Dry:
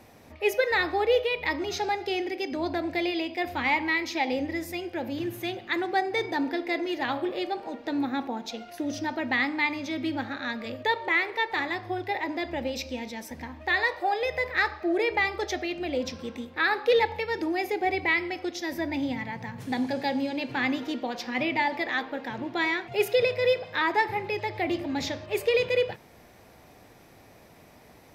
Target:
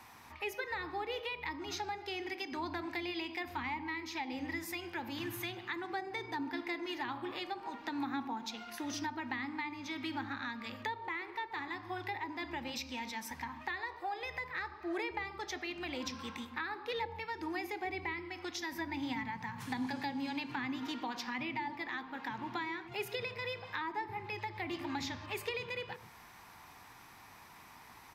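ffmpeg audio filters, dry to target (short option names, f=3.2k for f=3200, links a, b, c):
-filter_complex "[0:a]lowshelf=f=750:t=q:w=3:g=-8.5,acrossover=split=410[a][b];[a]aecho=1:1:136:0.531[c];[b]acompressor=threshold=-38dB:ratio=10[d];[c][d]amix=inputs=2:normalize=0"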